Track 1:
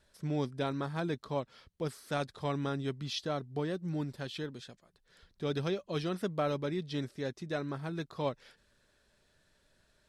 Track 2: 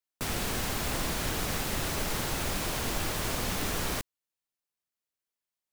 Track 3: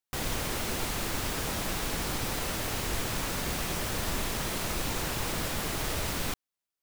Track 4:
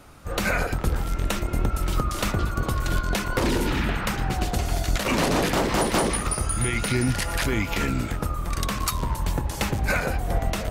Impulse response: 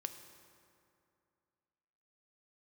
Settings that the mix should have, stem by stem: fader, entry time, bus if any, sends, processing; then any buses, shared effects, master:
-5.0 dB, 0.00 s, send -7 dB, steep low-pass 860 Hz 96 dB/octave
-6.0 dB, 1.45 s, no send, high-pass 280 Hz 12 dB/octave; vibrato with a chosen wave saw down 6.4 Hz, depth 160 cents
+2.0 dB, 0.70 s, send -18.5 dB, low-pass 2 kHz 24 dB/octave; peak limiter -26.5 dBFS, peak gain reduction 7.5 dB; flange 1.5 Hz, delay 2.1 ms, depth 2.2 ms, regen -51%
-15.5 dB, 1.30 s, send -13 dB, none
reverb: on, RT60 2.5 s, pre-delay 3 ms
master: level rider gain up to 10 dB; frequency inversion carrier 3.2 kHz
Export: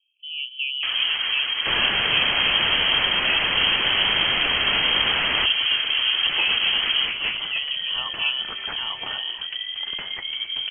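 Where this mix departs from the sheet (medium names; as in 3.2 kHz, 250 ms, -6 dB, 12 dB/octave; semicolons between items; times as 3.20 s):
stem 2 -6.0 dB -> +0.5 dB; stem 4: send off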